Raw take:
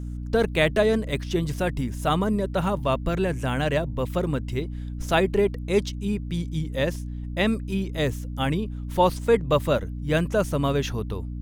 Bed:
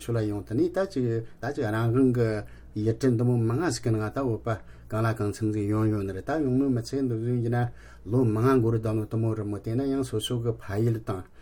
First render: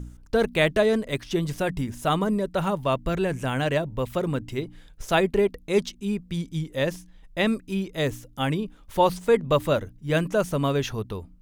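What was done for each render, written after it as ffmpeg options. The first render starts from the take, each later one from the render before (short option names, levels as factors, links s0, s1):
-af "bandreject=f=60:t=h:w=4,bandreject=f=120:t=h:w=4,bandreject=f=180:t=h:w=4,bandreject=f=240:t=h:w=4,bandreject=f=300:t=h:w=4"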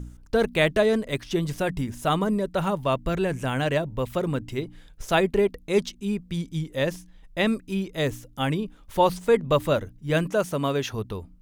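-filter_complex "[0:a]asettb=1/sr,asplit=3[s0][s1][s2];[s0]atrim=end=10.304[s3];[s1]atrim=start=10.3:end=10.94,asetpts=PTS-STARTPTS,afade=t=in:d=0.004:c=qsin,afade=t=out:st=0.636:d=0.004:c=qsin,highpass=f=170:p=1[s4];[s2]atrim=start=10.936[s5];[s3][s4]acrossfade=d=0.004:c1=hsin:c2=qsin[s6];[s6][s5]acrossfade=d=0.004:c1=qsin:c2=hsin"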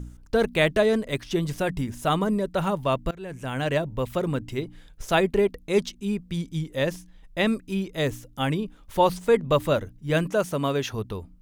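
-filter_complex "[0:a]asplit=2[s0][s1];[s0]atrim=end=3.11,asetpts=PTS-STARTPTS,afade=t=out:st=3.106:d=0.004:c=hsin:silence=0.0707946[s2];[s1]atrim=start=3.11,asetpts=PTS-STARTPTS,afade=t=in:d=0.65:silence=0.0707946[s3];[s2][s3]concat=n=2:v=0:a=1"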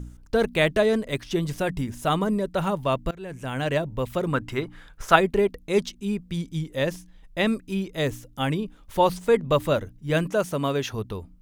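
-filter_complex "[0:a]asettb=1/sr,asplit=3[s0][s1][s2];[s0]atrim=end=4.334[s3];[s1]atrim=start=4.33:end=5.16,asetpts=PTS-STARTPTS,afade=t=in:d=0.004:c=qsin,afade=t=out:st=0.826:d=0.004:c=qsin,equalizer=f=1300:w=0.96:g=12.5[s4];[s2]atrim=start=5.156[s5];[s3][s4]acrossfade=d=0.004:c1=hsin:c2=qsin[s6];[s6][s5]acrossfade=d=0.004:c1=qsin:c2=hsin"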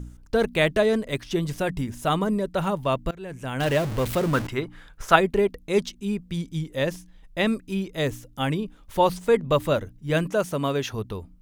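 -filter_complex "[0:a]asettb=1/sr,asplit=3[s0][s1][s2];[s0]atrim=end=3.604[s3];[s1]atrim=start=3.6:end=4.47,asetpts=PTS-STARTPTS,afade=t=in:d=0.004:c=qsin,afade=t=out:st=0.866:d=0.004:c=qsin,aeval=exprs='val(0)+0.5*0.0447*sgn(val(0))':c=same[s4];[s2]atrim=start=4.466[s5];[s3][s4]acrossfade=d=0.004:c1=hsin:c2=qsin[s6];[s6][s5]acrossfade=d=0.004:c1=qsin:c2=hsin"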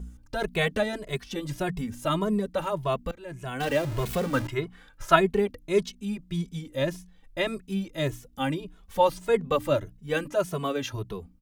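-filter_complex "[0:a]asplit=2[s0][s1];[s1]adelay=2.3,afreqshift=1.7[s2];[s0][s2]amix=inputs=2:normalize=1"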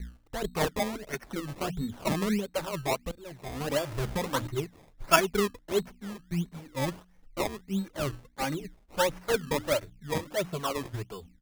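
-filter_complex "[0:a]acrossover=split=490[s0][s1];[s0]aeval=exprs='val(0)*(1-0.7/2+0.7/2*cos(2*PI*2.2*n/s))':c=same[s2];[s1]aeval=exprs='val(0)*(1-0.7/2-0.7/2*cos(2*PI*2.2*n/s))':c=same[s3];[s2][s3]amix=inputs=2:normalize=0,acrusher=samples=21:mix=1:aa=0.000001:lfo=1:lforange=21:lforate=1.5"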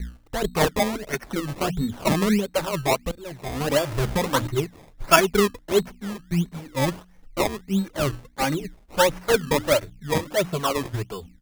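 -af "volume=2.37,alimiter=limit=0.794:level=0:latency=1"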